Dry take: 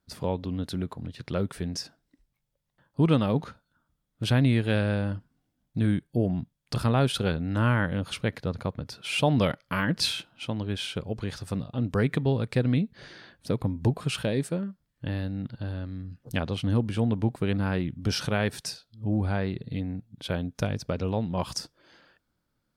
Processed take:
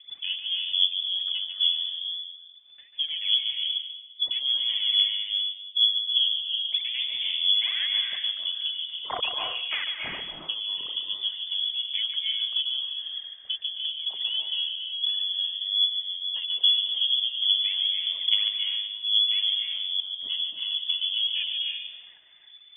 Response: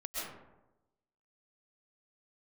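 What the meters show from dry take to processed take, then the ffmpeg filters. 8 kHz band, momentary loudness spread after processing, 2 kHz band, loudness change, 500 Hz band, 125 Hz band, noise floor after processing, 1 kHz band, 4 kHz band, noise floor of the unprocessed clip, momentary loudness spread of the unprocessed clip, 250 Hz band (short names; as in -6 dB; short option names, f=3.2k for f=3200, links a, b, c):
under -35 dB, 9 LU, -3.0 dB, +4.0 dB, -21.0 dB, under -35 dB, -51 dBFS, -9.0 dB, +16.5 dB, -78 dBFS, 12 LU, under -30 dB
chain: -filter_complex "[0:a]afwtdn=0.0316,adynamicequalizer=threshold=0.00251:dfrequency=2500:dqfactor=2:tfrequency=2500:tqfactor=2:attack=5:release=100:ratio=0.375:range=2:mode=cutabove:tftype=bell,acompressor=mode=upward:threshold=-43dB:ratio=2.5,lowshelf=f=91:g=10,acompressor=threshold=-28dB:ratio=6,aphaser=in_gain=1:out_gain=1:delay=4.9:decay=0.73:speed=1.2:type=triangular,asplit=2[a][b];[1:a]atrim=start_sample=2205,adelay=144[c];[b][c]afir=irnorm=-1:irlink=0,volume=-3.5dB[d];[a][d]amix=inputs=2:normalize=0,lowpass=f=3k:t=q:w=0.5098,lowpass=f=3k:t=q:w=0.6013,lowpass=f=3k:t=q:w=0.9,lowpass=f=3k:t=q:w=2.563,afreqshift=-3500"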